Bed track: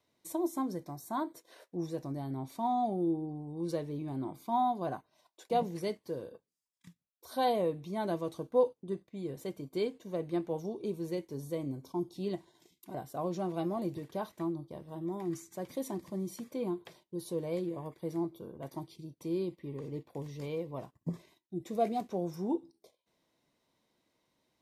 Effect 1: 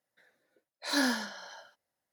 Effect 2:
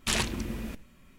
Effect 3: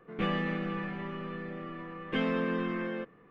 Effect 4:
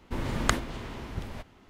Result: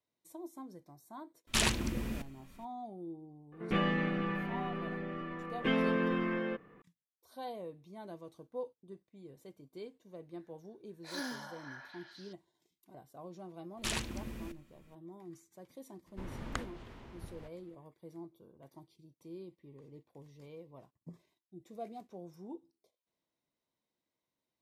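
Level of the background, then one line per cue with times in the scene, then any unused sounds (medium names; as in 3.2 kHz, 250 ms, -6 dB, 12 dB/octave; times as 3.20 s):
bed track -13.5 dB
1.47 s: add 2 -1.5 dB
3.52 s: add 3
10.21 s: add 1 -12 dB + repeats whose band climbs or falls 252 ms, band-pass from 910 Hz, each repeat 0.7 oct, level -1.5 dB
13.77 s: add 2 -8 dB
16.06 s: add 4 -12.5 dB + treble shelf 4.1 kHz -6 dB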